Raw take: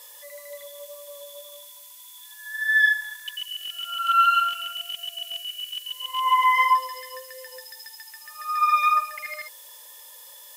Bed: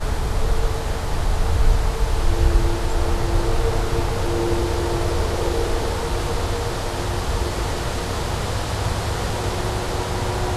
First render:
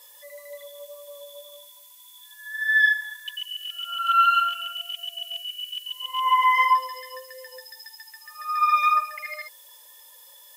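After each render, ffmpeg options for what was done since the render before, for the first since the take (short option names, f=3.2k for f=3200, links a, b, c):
-af "afftdn=nr=6:nf=-46"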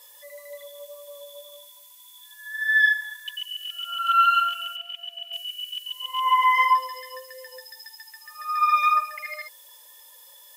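-filter_complex "[0:a]asettb=1/sr,asplit=3[a][b][c];[a]atrim=end=4.764[d];[b]atrim=start=4.76:end=5.33,asetpts=PTS-STARTPTS,afade=t=in:d=0.004:c=qsin,afade=t=out:st=0.566:d=0.004:c=qsin,acrossover=split=240 3500:gain=0.0708 1 0.2[e][f][g];[e][f][g]amix=inputs=3:normalize=0[h];[c]atrim=start=5.326[i];[d][h]acrossfade=d=0.004:c1=hsin:c2=qsin[j];[j][i]acrossfade=d=0.004:c1=qsin:c2=hsin"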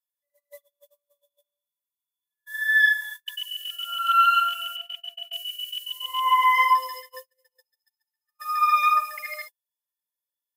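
-af "agate=range=-45dB:threshold=-37dB:ratio=16:detection=peak,highshelf=f=8.7k:g=6.5"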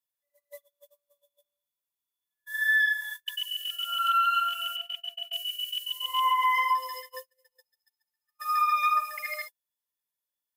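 -af "alimiter=limit=-17dB:level=0:latency=1:release=291"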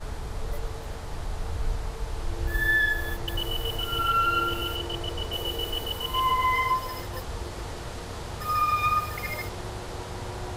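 -filter_complex "[1:a]volume=-12dB[a];[0:a][a]amix=inputs=2:normalize=0"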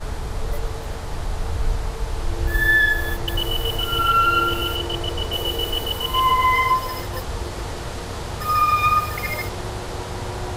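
-af "volume=6.5dB"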